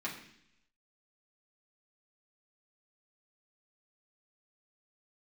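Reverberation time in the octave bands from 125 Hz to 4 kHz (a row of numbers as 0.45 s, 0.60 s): 0.90 s, 0.90 s, 0.70 s, 0.65 s, 0.90 s, 0.90 s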